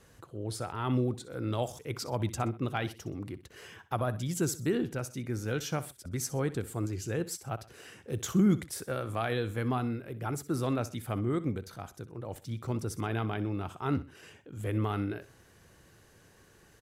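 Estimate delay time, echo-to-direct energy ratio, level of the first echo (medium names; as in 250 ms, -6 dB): 63 ms, -15.5 dB, -16.0 dB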